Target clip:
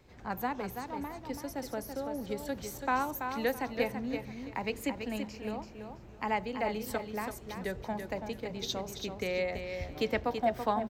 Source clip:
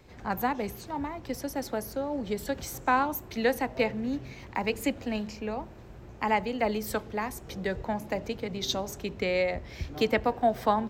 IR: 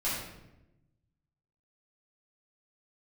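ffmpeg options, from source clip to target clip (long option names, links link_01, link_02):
-af "aecho=1:1:332|664|996:0.447|0.103|0.0236,volume=-5.5dB"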